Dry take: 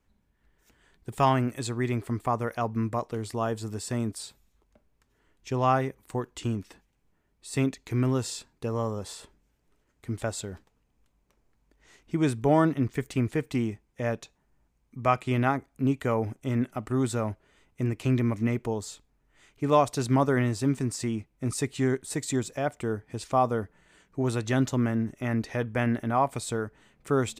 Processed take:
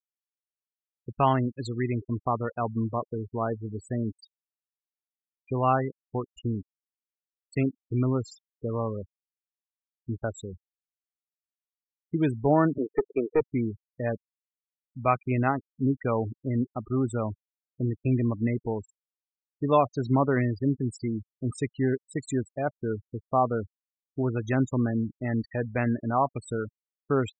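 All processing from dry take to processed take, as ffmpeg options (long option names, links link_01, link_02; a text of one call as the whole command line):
ffmpeg -i in.wav -filter_complex "[0:a]asettb=1/sr,asplit=3[link_01][link_02][link_03];[link_01]atrim=end=12.784[link_04];[link_02]atrim=start=12.78:end=13.41,asetpts=PTS-STARTPTS,afade=type=in:duration=0.004:curve=qsin,afade=type=out:start_time=0.626:duration=0.004:curve=qsin,highpass=frequency=420:width_type=q:width=3.3,aeval=exprs='clip(val(0),-1,0.106)':channel_layout=same[link_05];[link_03]atrim=start=13.406[link_06];[link_04][link_05]acrossfade=duration=0.004:curve1=hsin:curve2=qsin[link_07];[link_07][link_06]acrossfade=duration=0.004:curve1=qsin:curve2=hsin,lowpass=7900,afftfilt=real='re*gte(hypot(re,im),0.0398)':imag='im*gte(hypot(re,im),0.0398)':win_size=1024:overlap=0.75" out.wav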